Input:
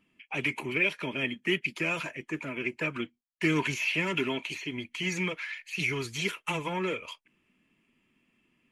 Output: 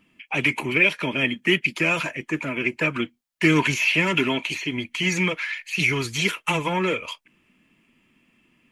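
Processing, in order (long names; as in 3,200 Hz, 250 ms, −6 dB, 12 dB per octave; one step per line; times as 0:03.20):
parametric band 400 Hz −3.5 dB 0.22 octaves
level +8.5 dB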